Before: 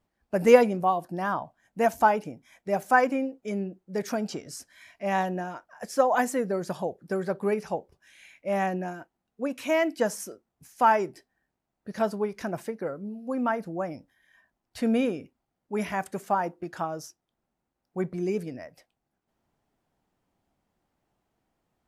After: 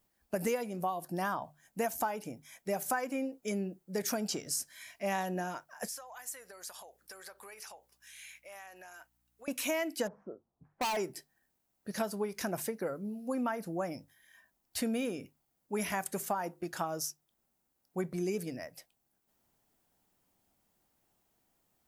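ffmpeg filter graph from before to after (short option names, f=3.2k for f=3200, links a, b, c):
-filter_complex "[0:a]asettb=1/sr,asplit=3[a][b][c];[a]atrim=end=5.884[d];[b]atrim=start=5.88:end=9.48,asetpts=PTS-STARTPTS,afade=t=in:d=0.004:c=qsin,afade=t=out:st=3.596:d=0.004:c=qsin,highpass=980,acompressor=threshold=-47dB:ratio=5:attack=3.2:release=140:knee=1:detection=peak,aeval=exprs='val(0)+0.000158*(sin(2*PI*60*n/s)+sin(2*PI*2*60*n/s)/2+sin(2*PI*3*60*n/s)/3+sin(2*PI*4*60*n/s)/4+sin(2*PI*5*60*n/s)/5)':c=same[e];[c]atrim=start=9.476[f];[d][e]acrossfade=d=0.004:c1=hsin:c2=qsin[g];[g][f]acrossfade=d=0.004:c1=qsin:c2=hsin,asettb=1/sr,asplit=3[h][i][j];[h]atrim=end=10.074[k];[i]atrim=start=10.07:end=10.97,asetpts=PTS-STARTPTS,afade=t=in:d=0.004:c=qsin,afade=t=out:st=0.896:d=0.004:c=qsin,lowpass=f=1.1k:w=0.5412,lowpass=f=1.1k:w=1.3066,asoftclip=type=hard:threshold=-26.5dB[l];[j]atrim=start=10.966[m];[k][l]acrossfade=d=0.004:c1=hsin:c2=qsin[n];[n][m]acrossfade=d=0.004:c1=qsin:c2=hsin,aemphasis=mode=production:type=75kf,bandreject=f=50:t=h:w=6,bandreject=f=100:t=h:w=6,bandreject=f=150:t=h:w=6,acompressor=threshold=-27dB:ratio=10,volume=-2.5dB"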